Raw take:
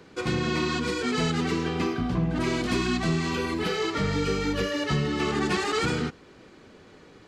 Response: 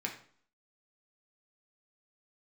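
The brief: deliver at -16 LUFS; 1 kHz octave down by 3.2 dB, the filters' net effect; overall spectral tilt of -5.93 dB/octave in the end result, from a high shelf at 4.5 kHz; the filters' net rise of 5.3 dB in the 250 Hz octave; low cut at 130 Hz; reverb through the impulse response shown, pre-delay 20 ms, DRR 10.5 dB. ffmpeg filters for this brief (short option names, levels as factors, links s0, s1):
-filter_complex "[0:a]highpass=130,equalizer=f=250:t=o:g=7.5,equalizer=f=1000:t=o:g=-4,highshelf=f=4500:g=-7.5,asplit=2[s0][s1];[1:a]atrim=start_sample=2205,adelay=20[s2];[s1][s2]afir=irnorm=-1:irlink=0,volume=0.211[s3];[s0][s3]amix=inputs=2:normalize=0,volume=2.37"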